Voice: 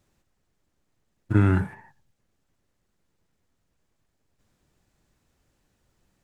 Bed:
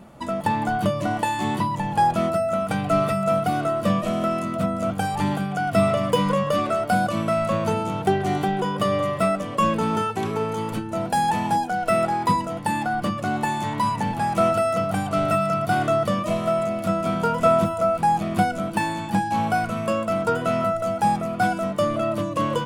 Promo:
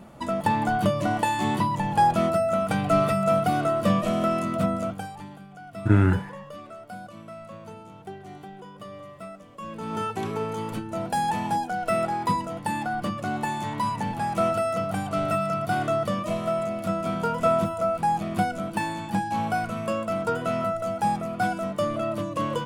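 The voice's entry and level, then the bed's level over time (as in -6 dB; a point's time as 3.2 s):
4.55 s, +1.0 dB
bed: 4.74 s -0.5 dB
5.28 s -19 dB
9.6 s -19 dB
10.04 s -4 dB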